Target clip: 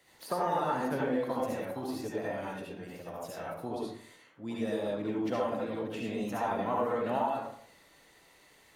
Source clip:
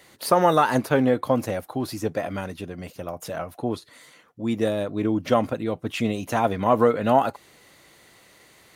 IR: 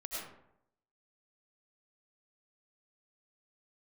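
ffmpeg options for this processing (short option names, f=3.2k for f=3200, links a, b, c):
-filter_complex "[1:a]atrim=start_sample=2205,asetrate=61740,aresample=44100[a];[0:a][a]afir=irnorm=-1:irlink=0,asplit=2[b][c];[c]asetrate=58866,aresample=44100,atempo=0.749154,volume=-17dB[d];[b][d]amix=inputs=2:normalize=0,acrossover=split=100|1600[e][f][g];[e]acompressor=threshold=-56dB:ratio=4[h];[f]acompressor=threshold=-23dB:ratio=4[i];[g]acompressor=threshold=-42dB:ratio=4[j];[h][i][j]amix=inputs=3:normalize=0,volume=-4.5dB"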